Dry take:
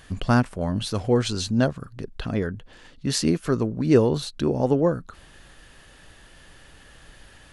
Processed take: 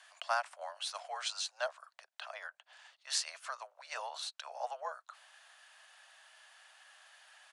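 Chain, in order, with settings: steep high-pass 650 Hz 72 dB/octave; frequency shift -28 Hz; resampled via 22.05 kHz; trim -7 dB

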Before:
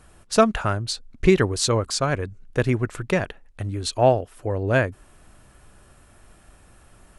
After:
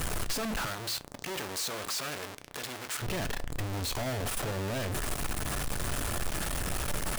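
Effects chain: one-bit comparator; 0.65–3.01 s: high-pass 320 Hz -> 960 Hz 6 dB/octave; reverberation RT60 0.30 s, pre-delay 7 ms, DRR 13 dB; trim -8.5 dB

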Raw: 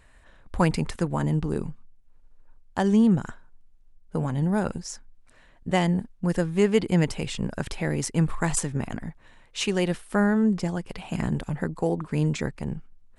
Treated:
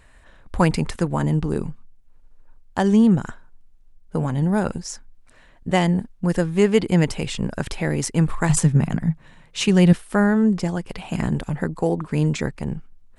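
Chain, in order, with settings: 8.49–9.93 s: peaking EQ 160 Hz +14 dB 0.59 oct; trim +4 dB

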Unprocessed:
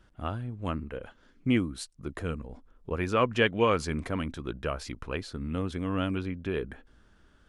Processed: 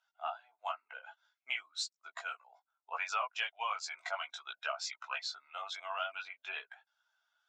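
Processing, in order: expander on every frequency bin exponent 1.5; Chebyshev band-pass 670–7400 Hz, order 5; band-stop 1.8 kHz, Q 7.5; compression 8:1, threshold -44 dBFS, peak gain reduction 19 dB; chorus voices 4, 0.41 Hz, delay 18 ms, depth 3 ms; trim +14 dB

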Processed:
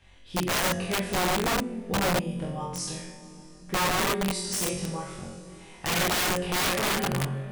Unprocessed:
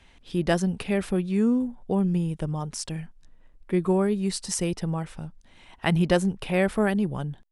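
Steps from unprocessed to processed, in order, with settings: flutter echo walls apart 3.8 m, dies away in 0.63 s; two-slope reverb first 0.49 s, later 4.6 s, from -19 dB, DRR 0.5 dB; integer overflow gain 14.5 dB; trim -6 dB

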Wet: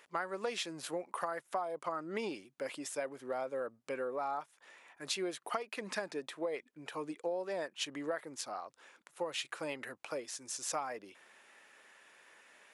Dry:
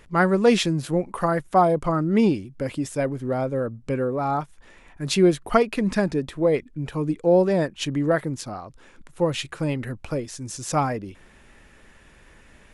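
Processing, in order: high-pass 590 Hz 12 dB/octave; compression 10:1, threshold -28 dBFS, peak gain reduction 14.5 dB; trim -5 dB

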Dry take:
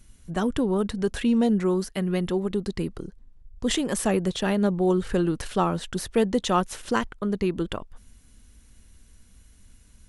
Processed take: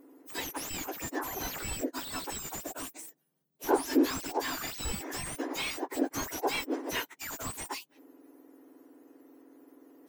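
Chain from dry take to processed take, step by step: spectrum inverted on a logarithmic axis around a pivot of 1.7 kHz; slew-rate limiter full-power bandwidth 90 Hz

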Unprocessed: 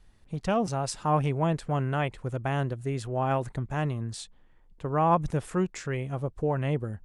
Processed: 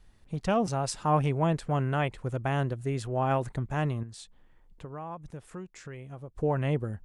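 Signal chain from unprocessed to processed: 4.03–6.35 s: compression 3:1, threshold -43 dBFS, peak gain reduction 18.5 dB

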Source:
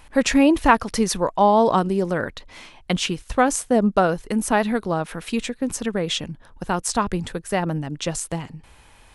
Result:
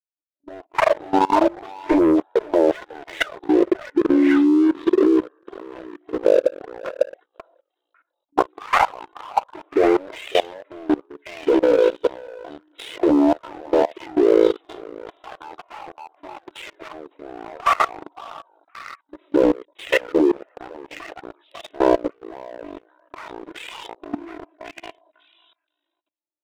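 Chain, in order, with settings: fade-in on the opening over 0.51 s; gate -36 dBFS, range -37 dB; peaking EQ 360 Hz +12.5 dB 0.68 oct; wide varispeed 0.346×; FFT band-pass 280–9600 Hz; touch-sensitive flanger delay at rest 3.3 ms, full sweep at -10.5 dBFS; tilt EQ -4.5 dB/octave; on a send: repeats whose band climbs or falls 548 ms, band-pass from 720 Hz, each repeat 1.4 oct, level -2 dB; on the sum: waveshaping leveller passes 2; level held to a coarse grid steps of 22 dB; trim +7.5 dB

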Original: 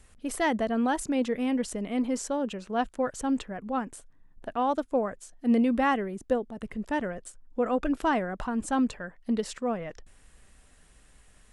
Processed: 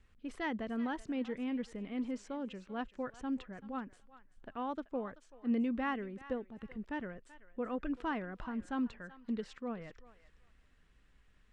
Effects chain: low-pass 3.5 kHz 12 dB/octave; peaking EQ 670 Hz -7 dB 0.87 oct; thinning echo 383 ms, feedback 26%, high-pass 970 Hz, level -14 dB; trim -8.5 dB

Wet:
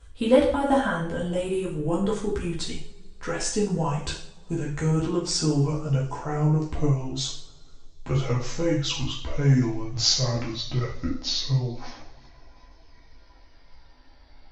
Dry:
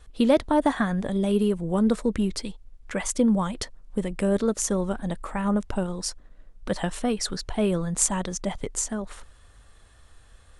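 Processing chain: gliding tape speed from 95% -> 51%; two-slope reverb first 0.52 s, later 2.9 s, from -27 dB, DRR -2 dB; chorus voices 6, 0.68 Hz, delay 14 ms, depth 2 ms

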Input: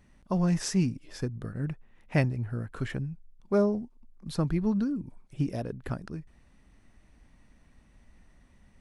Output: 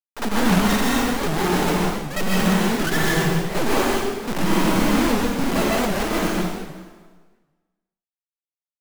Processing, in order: formants replaced by sine waves; peaking EQ 540 Hz -7 dB 0.25 oct; hum notches 50/100/150/200/250 Hz; in parallel at 0 dB: compression 4:1, threshold -37 dBFS, peak gain reduction 15 dB; on the sum: half-wave rectifier; level-controlled noise filter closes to 430 Hz, open at -24.5 dBFS; granulator 100 ms, grains 20 per s, spray 100 ms; companded quantiser 2-bit; on a send: reverse echo 54 ms -9.5 dB; on the sum: plate-style reverb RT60 1.4 s, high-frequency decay 0.9×, pre-delay 110 ms, DRR -5 dB; warped record 78 rpm, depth 250 cents; trim +6.5 dB

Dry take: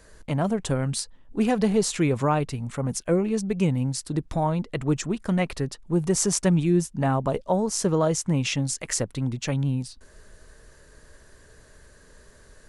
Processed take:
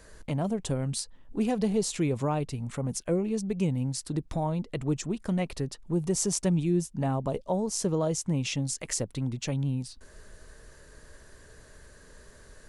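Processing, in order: dynamic bell 1.5 kHz, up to -7 dB, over -44 dBFS, Q 1.1; in parallel at 0 dB: compression, threshold -35 dBFS, peak gain reduction 17 dB; on the sum: trim -6 dB

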